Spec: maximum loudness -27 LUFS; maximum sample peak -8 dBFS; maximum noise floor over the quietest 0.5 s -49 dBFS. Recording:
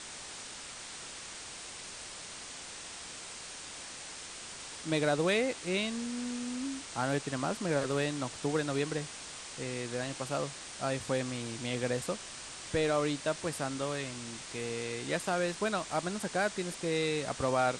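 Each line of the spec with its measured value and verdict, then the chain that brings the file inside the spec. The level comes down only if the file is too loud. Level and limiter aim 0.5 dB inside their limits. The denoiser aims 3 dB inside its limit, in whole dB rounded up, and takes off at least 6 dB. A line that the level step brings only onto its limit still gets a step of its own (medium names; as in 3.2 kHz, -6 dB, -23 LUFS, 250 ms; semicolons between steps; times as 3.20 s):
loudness -35.0 LUFS: pass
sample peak -16.5 dBFS: pass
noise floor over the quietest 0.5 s -45 dBFS: fail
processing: noise reduction 7 dB, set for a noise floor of -45 dBFS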